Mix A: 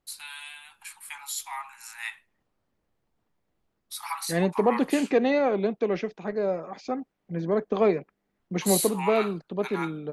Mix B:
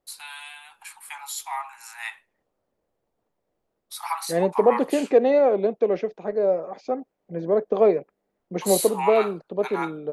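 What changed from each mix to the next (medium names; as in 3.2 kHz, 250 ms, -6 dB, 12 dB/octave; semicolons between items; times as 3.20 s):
second voice -5.5 dB; master: add peaking EQ 540 Hz +12.5 dB 1.5 oct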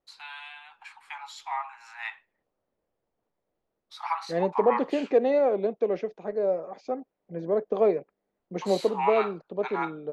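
first voice: add distance through air 190 m; second voice -4.5 dB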